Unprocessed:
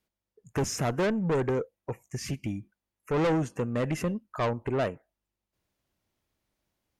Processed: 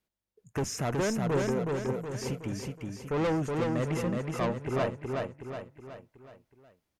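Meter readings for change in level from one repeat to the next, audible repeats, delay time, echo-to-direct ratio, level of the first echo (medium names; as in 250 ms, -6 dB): -6.5 dB, 5, 370 ms, -2.0 dB, -3.0 dB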